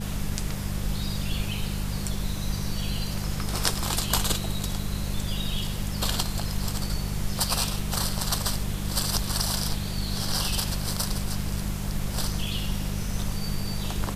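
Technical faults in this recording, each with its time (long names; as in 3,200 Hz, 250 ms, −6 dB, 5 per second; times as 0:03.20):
mains hum 50 Hz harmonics 4 −32 dBFS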